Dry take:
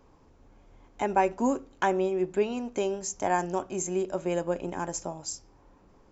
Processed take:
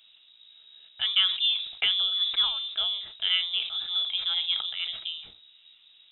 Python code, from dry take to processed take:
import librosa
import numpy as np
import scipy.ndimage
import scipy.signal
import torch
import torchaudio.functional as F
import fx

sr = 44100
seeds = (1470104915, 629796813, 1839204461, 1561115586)

y = fx.freq_invert(x, sr, carrier_hz=3800)
y = fx.sustainer(y, sr, db_per_s=84.0)